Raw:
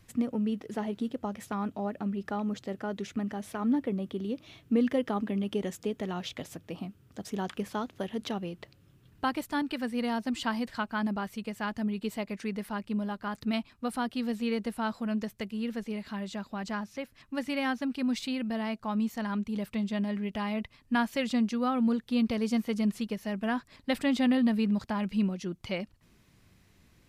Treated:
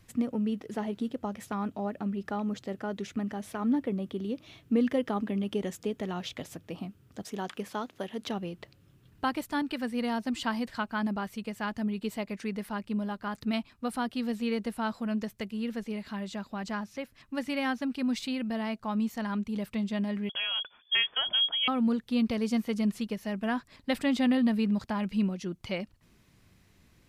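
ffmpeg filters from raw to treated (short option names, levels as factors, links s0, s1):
-filter_complex "[0:a]asettb=1/sr,asplit=3[s0][s1][s2];[s0]atrim=end=7.234[s3];[s1]atrim=start=7.23:end=8.27,asetpts=PTS-STARTPTS,afade=t=in:d=0.004:c=qsin,afade=t=out:st=1.036:d=0.004:c=qsin,highpass=f=250:p=1[s4];[s2]atrim=start=8.266[s5];[s3][s4]acrossfade=d=0.004:c1=hsin:c2=qsin[s6];[s6][s5]acrossfade=d=0.004:c1=qsin:c2=hsin,asettb=1/sr,asplit=3[s7][s8][s9];[s7]atrim=end=20.294[s10];[s8]atrim=start=20.29:end=21.68,asetpts=PTS-STARTPTS,afade=t=in:d=0.004:c=qsin,afade=t=out:st=1.386:d=0.004:c=qsin,lowpass=f=3000:t=q:w=0.5098,lowpass=f=3000:t=q:w=0.6013,lowpass=f=3000:t=q:w=0.9,lowpass=f=3000:t=q:w=2.563,afreqshift=-3500[s11];[s9]atrim=start=21.676[s12];[s10][s11]acrossfade=d=0.004:c1=hsin:c2=qsin[s13];[s13][s12]acrossfade=d=0.004:c1=qsin:c2=hsin"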